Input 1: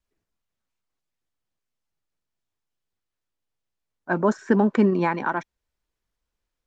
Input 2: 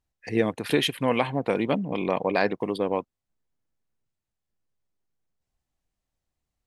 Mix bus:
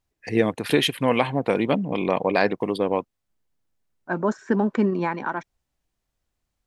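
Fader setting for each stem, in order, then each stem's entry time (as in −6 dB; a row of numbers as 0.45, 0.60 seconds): −2.5, +3.0 decibels; 0.00, 0.00 seconds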